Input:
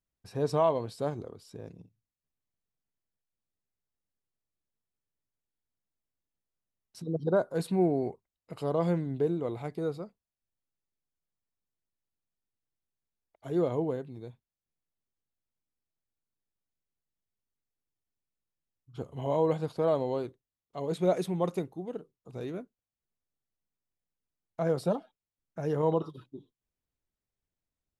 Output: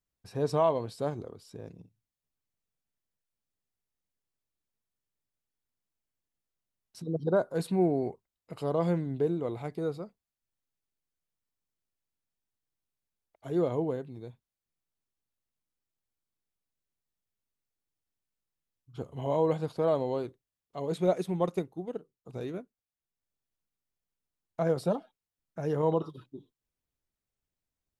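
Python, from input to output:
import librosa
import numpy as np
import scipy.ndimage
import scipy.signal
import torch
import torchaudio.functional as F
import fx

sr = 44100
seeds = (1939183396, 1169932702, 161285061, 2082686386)

y = fx.transient(x, sr, attack_db=2, sustain_db=-5, at=(21.07, 24.76))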